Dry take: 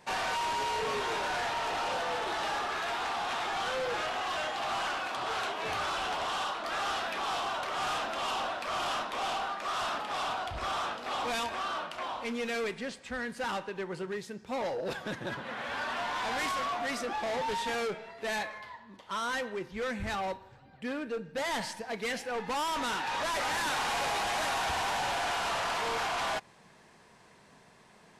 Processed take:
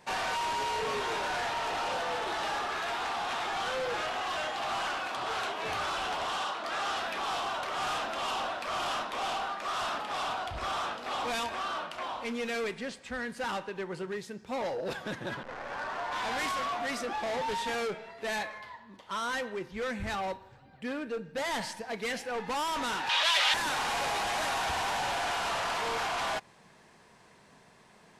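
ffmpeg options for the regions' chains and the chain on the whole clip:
-filter_complex "[0:a]asettb=1/sr,asplit=3[a][b][c];[a]atrim=end=6.374[d];[b]atrim=start=6.37:end=6.97,asetpts=PTS-STARTPTS,afade=t=in:d=0.004:c=qsin,afade=t=out:st=0.596:d=0.004:c=qsin,lowpass=11k,lowshelf=f=77:g=-9[e];[c]atrim=start=6.966[f];[d][e]acrossfade=d=0.004:c1=hsin:c2=qsin[g];[g][f]acrossfade=d=0.004:c1=qsin:c2=hsin,asettb=1/sr,asplit=3[h][i][j];[h]atrim=end=15.434[k];[i]atrim=start=15.43:end=16.12,asetpts=PTS-STARTPTS,afade=t=in:d=0.004:c=qsin,afade=t=out:st=0.686:d=0.004:c=qsin,highpass=f=300:w=0.5412,highpass=f=300:w=1.3066,acrusher=bits=7:dc=4:mix=0:aa=0.000001,adynamicsmooth=sensitivity=3:basefreq=770[l];[j]atrim=start=16.116[m];[k][l]acrossfade=d=0.004:c1=hsin:c2=qsin[n];[n][m]acrossfade=d=0.004:c1=qsin:c2=hsin,asettb=1/sr,asplit=3[o][p][q];[o]atrim=end=23.094[r];[p]atrim=start=23.09:end=23.54,asetpts=PTS-STARTPTS,afade=t=in:d=0.004:c=qsin,afade=t=out:st=0.446:d=0.004:c=qsin,highpass=650,equalizer=f=3.3k:t=o:w=1.3:g=15[s];[q]atrim=start=23.536[t];[r][s]acrossfade=d=0.004:c1=hsin:c2=qsin[u];[u][t]acrossfade=d=0.004:c1=qsin:c2=hsin"

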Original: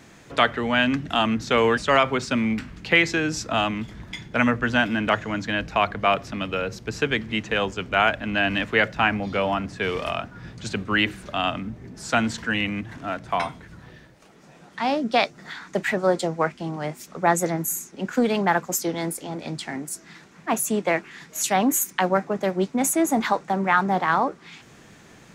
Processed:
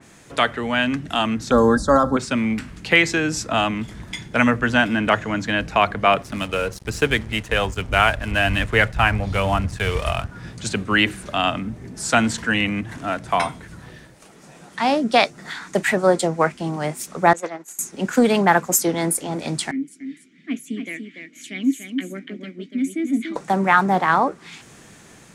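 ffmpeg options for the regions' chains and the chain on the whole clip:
-filter_complex "[0:a]asettb=1/sr,asplit=3[a][b][c];[a]atrim=end=1.514[d];[b]atrim=start=1.51:end=2.17,asetpts=PTS-STARTPTS,afade=t=in:d=0.004:c=qsin,afade=t=out:st=0.656:d=0.004:c=qsin,asuperstop=centerf=2500:order=8:qfactor=1.1,lowshelf=f=240:g=11.5,aecho=1:1:3.7:0.55,atrim=end_sample=29106[e];[c]atrim=start=2.166[f];[d][e]acrossfade=d=0.004:c1=hsin:c2=qsin[g];[g][f]acrossfade=d=0.004:c1=qsin:c2=hsin,asettb=1/sr,asplit=3[h][i][j];[h]atrim=end=6.224[k];[i]atrim=start=6.22:end=10.3,asetpts=PTS-STARTPTS,afade=t=in:d=0.004:c=qsin,afade=t=out:st=4.076:d=0.004:c=qsin,asubboost=boost=10:cutoff=86,aphaser=in_gain=1:out_gain=1:delay=2.2:decay=0.22:speed=1.2:type=triangular,aeval=exprs='sgn(val(0))*max(abs(val(0))-0.00841,0)':c=same[l];[j]atrim=start=10.296[m];[k][l]acrossfade=d=0.004:c1=hsin:c2=qsin[n];[n][m]acrossfade=d=0.004:c1=qsin:c2=hsin,asettb=1/sr,asplit=3[o][p][q];[o]atrim=end=17.334[r];[p]atrim=start=17.33:end=17.79,asetpts=PTS-STARTPTS,afade=t=in:d=0.004:c=qsin,afade=t=out:st=0.456:d=0.004:c=qsin,agate=range=-33dB:threshold=-20dB:ratio=3:release=100:detection=peak,aeval=exprs='clip(val(0),-1,0.0422)':c=same,highpass=450,lowpass=4.1k[s];[q]atrim=start=17.786[t];[r][s]acrossfade=d=0.004:c1=hsin:c2=qsin[u];[u][t]acrossfade=d=0.004:c1=qsin:c2=hsin,asettb=1/sr,asplit=3[v][w][x];[v]atrim=end=19.714[y];[w]atrim=start=19.71:end=23.36,asetpts=PTS-STARTPTS,afade=t=in:d=0.004:c=qsin,afade=t=out:st=3.646:d=0.004:c=qsin,aphaser=in_gain=1:out_gain=1:delay=1.1:decay=0.31:speed=1.2:type=sinusoidal,asplit=3[z][aa][ab];[z]bandpass=f=270:t=q:w=8,volume=0dB[ac];[aa]bandpass=f=2.29k:t=q:w=8,volume=-6dB[ad];[ab]bandpass=f=3.01k:t=q:w=8,volume=-9dB[ae];[ac][ad][ae]amix=inputs=3:normalize=0,aecho=1:1:290:0.473,atrim=end_sample=160965[af];[x]atrim=start=23.356[ag];[y][af]acrossfade=d=0.004:c1=hsin:c2=qsin[ah];[ah][ag]acrossfade=d=0.004:c1=qsin:c2=hsin,equalizer=f=9.5k:w=1.2:g=10.5,dynaudnorm=f=970:g=5:m=11.5dB,adynamicequalizer=threshold=0.0224:dfrequency=3200:dqfactor=0.7:tfrequency=3200:tqfactor=0.7:attack=5:release=100:ratio=0.375:range=2.5:mode=cutabove:tftype=highshelf"

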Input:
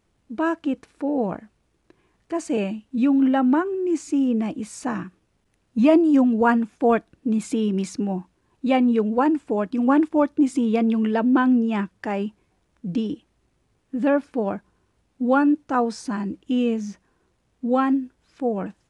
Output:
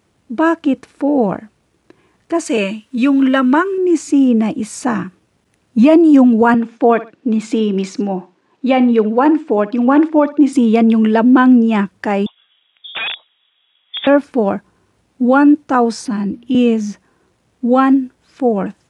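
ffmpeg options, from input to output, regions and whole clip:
-filter_complex "[0:a]asettb=1/sr,asplit=3[a][b][c];[a]atrim=end=2.464[d];[b]atrim=start=2.46:end=3.78,asetpts=PTS-STARTPTS,afade=t=in:d=0.004:c=qsin,afade=t=out:st=1.316:d=0.004:c=qsin,asuperstop=centerf=770:order=4:qfactor=4.6,tiltshelf=f=630:g=-5.5[e];[c]atrim=start=3.776[f];[d][e]acrossfade=d=0.004:c1=hsin:c2=qsin[g];[g][f]acrossfade=d=0.004:c1=qsin:c2=hsin,asettb=1/sr,asplit=3[h][i][j];[h]atrim=end=6.544[k];[i]atrim=start=6.54:end=10.53,asetpts=PTS-STARTPTS,afade=t=in:d=0.004:c=qsin,afade=t=out:st=3.986:d=0.004:c=qsin,highpass=230,lowpass=5.2k,aecho=1:1:63|126:0.126|0.034,atrim=end_sample=175959[l];[j]atrim=start=10.526[m];[k][l]acrossfade=d=0.004:c1=hsin:c2=qsin[n];[n][m]acrossfade=d=0.004:c1=qsin:c2=hsin,asettb=1/sr,asplit=3[o][p][q];[o]atrim=end=12.264[r];[p]atrim=start=12.26:end=14.07,asetpts=PTS-STARTPTS,afade=t=in:d=0.004:c=qsin,afade=t=out:st=1.806:d=0.004:c=qsin,lowshelf=f=300:t=q:w=3:g=-13.5,aeval=exprs='(mod(18.8*val(0)+1,2)-1)/18.8':c=same,lowpass=f=3.2k:t=q:w=0.5098,lowpass=f=3.2k:t=q:w=0.6013,lowpass=f=3.2k:t=q:w=0.9,lowpass=f=3.2k:t=q:w=2.563,afreqshift=-3800[s];[q]atrim=start=14.066[t];[r][s]acrossfade=d=0.004:c1=hsin:c2=qsin[u];[u][t]acrossfade=d=0.004:c1=qsin:c2=hsin,asettb=1/sr,asplit=3[v][w][x];[v]atrim=end=16.054[y];[w]atrim=start=16.05:end=16.55,asetpts=PTS-STARTPTS,afade=t=in:d=0.004:c=qsin,afade=t=out:st=0.496:d=0.004:c=qsin,equalizer=f=7.3k:t=o:w=0.42:g=-12.5,bandreject=f=119:t=h:w=4,bandreject=f=238:t=h:w=4,acrossover=split=300|3000[z][aa][ab];[aa]acompressor=threshold=-38dB:ratio=3:attack=3.2:release=140:knee=2.83:detection=peak[ac];[z][ac][ab]amix=inputs=3:normalize=0[ad];[x]atrim=start=16.546[ae];[y][ad]acrossfade=d=0.004:c1=hsin:c2=qsin[af];[af][ae]acrossfade=d=0.004:c1=qsin:c2=hsin,highpass=85,alimiter=level_in=10.5dB:limit=-1dB:release=50:level=0:latency=1,volume=-1dB"

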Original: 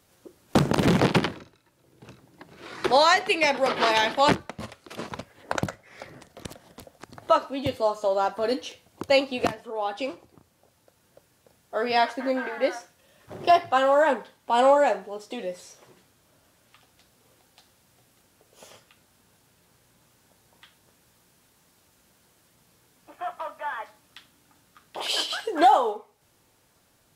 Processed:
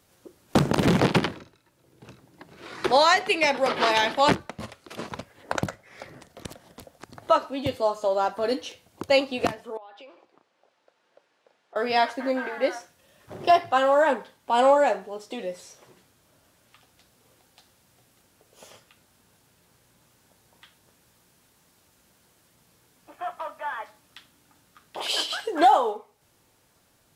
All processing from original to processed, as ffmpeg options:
-filter_complex "[0:a]asettb=1/sr,asplit=3[a][b][c];[a]atrim=end=9.774[d];[b]atrim=start=9.77:end=11.76,asetpts=PTS-STARTPTS,afade=t=in:d=0.004:c=qsin,afade=t=out:st=1.986:d=0.004:c=qsin,highpass=450,lowpass=3.6k,acompressor=threshold=-46dB:ratio=4:attack=3.2:release=140:knee=1:detection=peak[e];[c]atrim=start=11.756[f];[d][e]acrossfade=d=0.004:c1=hsin:c2=qsin[g];[g][f]acrossfade=d=0.004:c1=qsin:c2=hsin"

